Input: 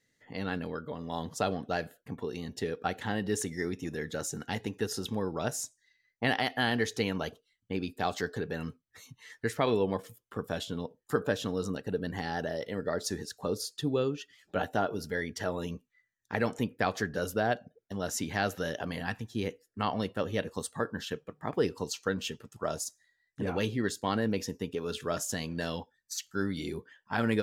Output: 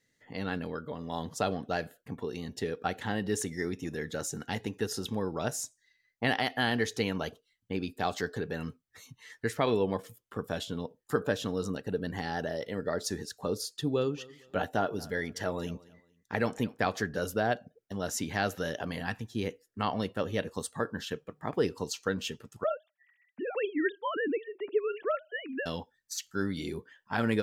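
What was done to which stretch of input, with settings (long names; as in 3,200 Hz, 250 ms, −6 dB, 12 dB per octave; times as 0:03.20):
0:13.70–0:16.95: repeating echo 229 ms, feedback 29%, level −21.5 dB
0:22.64–0:25.66: three sine waves on the formant tracks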